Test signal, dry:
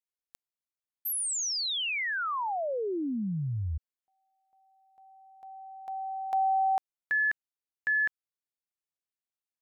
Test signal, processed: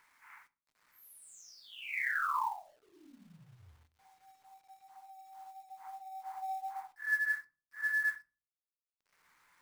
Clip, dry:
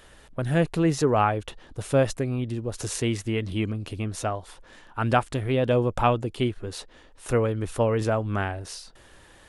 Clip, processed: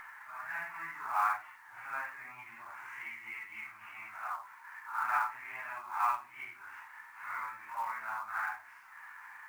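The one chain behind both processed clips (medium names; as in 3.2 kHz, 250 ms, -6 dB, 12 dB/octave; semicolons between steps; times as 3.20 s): phase randomisation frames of 200 ms; elliptic band-pass 900–2200 Hz, stop band 40 dB; upward compressor, threshold -38 dBFS; companded quantiser 6-bit; simulated room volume 180 m³, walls furnished, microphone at 0.41 m; trim -2 dB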